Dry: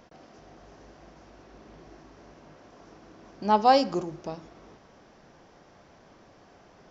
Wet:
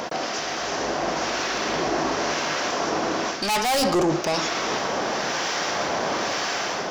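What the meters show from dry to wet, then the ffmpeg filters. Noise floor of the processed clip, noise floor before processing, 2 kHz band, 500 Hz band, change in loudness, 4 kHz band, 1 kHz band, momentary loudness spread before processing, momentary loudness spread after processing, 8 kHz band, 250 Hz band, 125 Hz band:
-29 dBFS, -56 dBFS, +18.0 dB, +7.5 dB, +0.5 dB, +15.0 dB, +4.0 dB, 20 LU, 5 LU, no reading, +7.5 dB, +9.0 dB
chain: -filter_complex "[0:a]asplit=2[s0][s1];[s1]highpass=f=720:p=1,volume=56.2,asoftclip=type=tanh:threshold=0.447[s2];[s0][s2]amix=inputs=2:normalize=0,lowpass=f=6100:p=1,volume=0.501,dynaudnorm=f=560:g=5:m=3.76,highshelf=f=3700:g=9,areverse,acompressor=threshold=0.0891:ratio=6,areverse,acrossover=split=1200[s3][s4];[s3]aeval=exprs='val(0)*(1-0.5/2+0.5/2*cos(2*PI*1*n/s))':c=same[s5];[s4]aeval=exprs='val(0)*(1-0.5/2-0.5/2*cos(2*PI*1*n/s))':c=same[s6];[s5][s6]amix=inputs=2:normalize=0,volume=1.19"

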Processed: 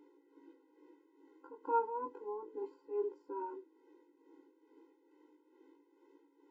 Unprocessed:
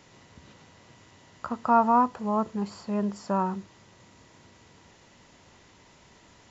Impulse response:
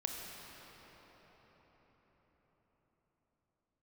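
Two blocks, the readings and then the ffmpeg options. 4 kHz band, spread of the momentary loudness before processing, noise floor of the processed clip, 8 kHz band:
under -30 dB, 15 LU, -71 dBFS, no reading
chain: -filter_complex "[0:a]acrossover=split=120[s0][s1];[s1]bandpass=f=240:t=q:w=2.8:csg=0[s2];[s0][s2]amix=inputs=2:normalize=0,tremolo=f=2.3:d=0.62,flanger=delay=17:depth=4.8:speed=0.32,afftfilt=real='re*eq(mod(floor(b*sr/1024/270),2),1)':imag='im*eq(mod(floor(b*sr/1024/270),2),1)':win_size=1024:overlap=0.75,volume=4.22"

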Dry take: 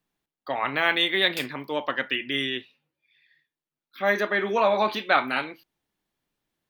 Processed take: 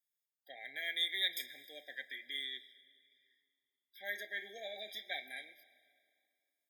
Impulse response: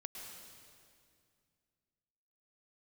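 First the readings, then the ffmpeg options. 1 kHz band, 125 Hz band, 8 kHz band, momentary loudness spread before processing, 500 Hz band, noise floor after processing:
-30.0 dB, under -35 dB, no reading, 9 LU, -25.0 dB, under -85 dBFS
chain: -filter_complex "[0:a]aderivative,asplit=2[s0][s1];[1:a]atrim=start_sample=2205[s2];[s1][s2]afir=irnorm=-1:irlink=0,volume=0.316[s3];[s0][s3]amix=inputs=2:normalize=0,afftfilt=real='re*eq(mod(floor(b*sr/1024/790),2),0)':imag='im*eq(mod(floor(b*sr/1024/790),2),0)':win_size=1024:overlap=0.75,volume=0.596"

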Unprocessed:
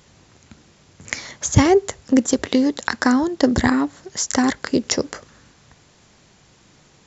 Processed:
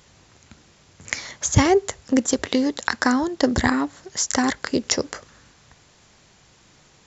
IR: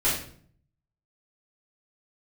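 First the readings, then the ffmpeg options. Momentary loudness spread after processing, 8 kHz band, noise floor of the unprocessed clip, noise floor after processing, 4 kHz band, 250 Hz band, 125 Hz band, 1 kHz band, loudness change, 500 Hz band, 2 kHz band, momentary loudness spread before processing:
10 LU, no reading, -54 dBFS, -55 dBFS, 0.0 dB, -4.0 dB, -2.5 dB, -1.0 dB, -2.5 dB, -2.5 dB, 0.0 dB, 12 LU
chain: -af "equalizer=f=220:w=0.53:g=-4"

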